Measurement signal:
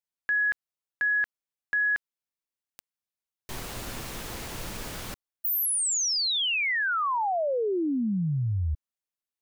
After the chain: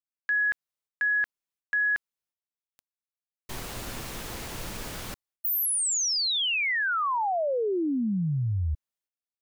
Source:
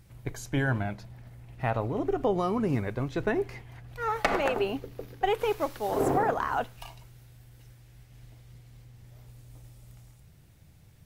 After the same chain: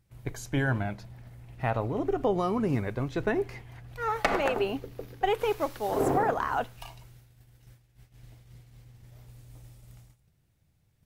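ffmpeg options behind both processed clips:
-af "agate=range=-13dB:threshold=-50dB:ratio=16:release=490:detection=peak"

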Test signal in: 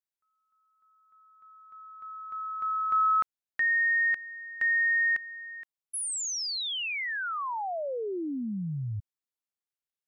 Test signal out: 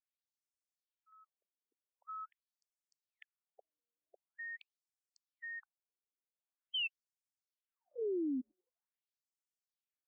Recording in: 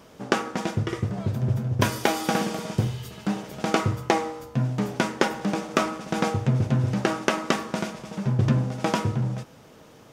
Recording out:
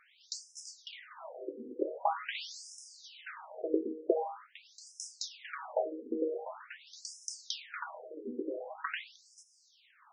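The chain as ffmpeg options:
-af "afftfilt=real='re*between(b*sr/1024,350*pow(7200/350,0.5+0.5*sin(2*PI*0.45*pts/sr))/1.41,350*pow(7200/350,0.5+0.5*sin(2*PI*0.45*pts/sr))*1.41)':imag='im*between(b*sr/1024,350*pow(7200/350,0.5+0.5*sin(2*PI*0.45*pts/sr))/1.41,350*pow(7200/350,0.5+0.5*sin(2*PI*0.45*pts/sr))*1.41)':win_size=1024:overlap=0.75,volume=-2.5dB"

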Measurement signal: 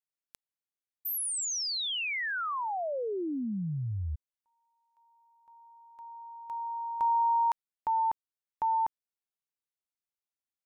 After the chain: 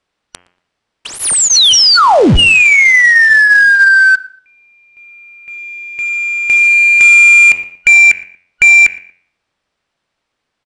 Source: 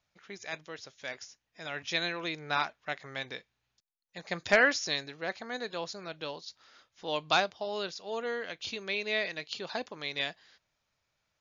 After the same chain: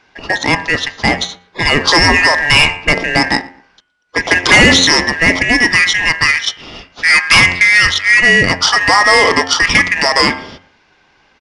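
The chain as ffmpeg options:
-filter_complex "[0:a]afftfilt=real='real(if(lt(b,272),68*(eq(floor(b/68),0)*1+eq(floor(b/68),1)*0+eq(floor(b/68),2)*3+eq(floor(b/68),3)*2)+mod(b,68),b),0)':imag='imag(if(lt(b,272),68*(eq(floor(b/68),0)*1+eq(floor(b/68),1)*0+eq(floor(b/68),2)*3+eq(floor(b/68),3)*2)+mod(b,68),b),0)':win_size=2048:overlap=0.75,bandreject=f=6.6k:w=17,bandreject=f=89.17:t=h:w=4,bandreject=f=178.34:t=h:w=4,bandreject=f=267.51:t=h:w=4,bandreject=f=356.68:t=h:w=4,bandreject=f=445.85:t=h:w=4,bandreject=f=535.02:t=h:w=4,bandreject=f=624.19:t=h:w=4,bandreject=f=713.36:t=h:w=4,bandreject=f=802.53:t=h:w=4,bandreject=f=891.7:t=h:w=4,bandreject=f=980.87:t=h:w=4,bandreject=f=1.07004k:t=h:w=4,bandreject=f=1.15921k:t=h:w=4,bandreject=f=1.24838k:t=h:w=4,bandreject=f=1.33755k:t=h:w=4,bandreject=f=1.42672k:t=h:w=4,bandreject=f=1.51589k:t=h:w=4,bandreject=f=1.60506k:t=h:w=4,bandreject=f=1.69423k:t=h:w=4,bandreject=f=1.7834k:t=h:w=4,bandreject=f=1.87257k:t=h:w=4,bandreject=f=1.96174k:t=h:w=4,bandreject=f=2.05091k:t=h:w=4,bandreject=f=2.14008k:t=h:w=4,bandreject=f=2.22925k:t=h:w=4,bandreject=f=2.31842k:t=h:w=4,bandreject=f=2.40759k:t=h:w=4,bandreject=f=2.49676k:t=h:w=4,bandreject=f=2.58593k:t=h:w=4,bandreject=f=2.6751k:t=h:w=4,bandreject=f=2.76427k:t=h:w=4,bandreject=f=2.85344k:t=h:w=4,bandreject=f=2.94261k:t=h:w=4,bandreject=f=3.03178k:t=h:w=4,bandreject=f=3.12095k:t=h:w=4,bandreject=f=3.21012k:t=h:w=4,asplit=2[a][b];[b]acompressor=threshold=-40dB:ratio=20:attack=22:release=100:knee=6:detection=peak,volume=2.5dB[c];[a][c]amix=inputs=2:normalize=0,acrusher=bits=4:mode=log:mix=0:aa=0.000001,adynamicsmooth=sensitivity=7:basefreq=3.8k,asplit=2[d][e];[e]adelay=117,lowpass=f=2.1k:p=1,volume=-22.5dB,asplit=2[f][g];[g]adelay=117,lowpass=f=2.1k:p=1,volume=0.35[h];[d][f][h]amix=inputs=3:normalize=0,aresample=22050,aresample=44100,apsyclip=25dB,volume=-2dB"

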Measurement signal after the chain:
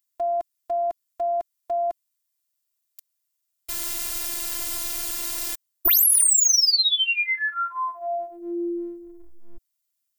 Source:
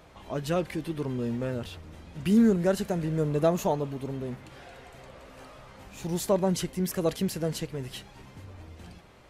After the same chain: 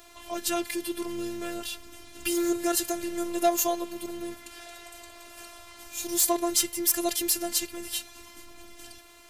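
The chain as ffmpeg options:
-af "crystalizer=i=5:c=0,volume=14.5dB,asoftclip=hard,volume=-14.5dB,afftfilt=real='hypot(re,im)*cos(PI*b)':imag='0':win_size=512:overlap=0.75,volume=2dB"

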